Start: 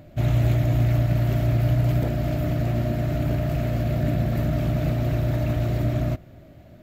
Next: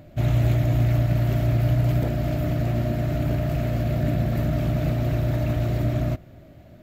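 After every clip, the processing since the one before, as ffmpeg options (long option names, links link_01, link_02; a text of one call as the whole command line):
ffmpeg -i in.wav -af anull out.wav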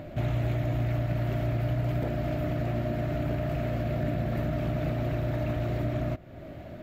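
ffmpeg -i in.wav -af "bass=frequency=250:gain=-5,treble=frequency=4000:gain=-9,acompressor=threshold=-44dB:ratio=2,volume=8.5dB" out.wav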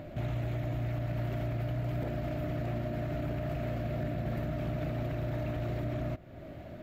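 ffmpeg -i in.wav -af "alimiter=limit=-23.5dB:level=0:latency=1:release=30,volume=-3dB" out.wav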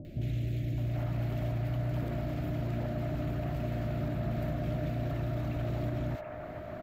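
ffmpeg -i in.wav -filter_complex "[0:a]acrossover=split=490|2100[link_01][link_02][link_03];[link_03]adelay=50[link_04];[link_02]adelay=780[link_05];[link_01][link_05][link_04]amix=inputs=3:normalize=0,volume=1.5dB" out.wav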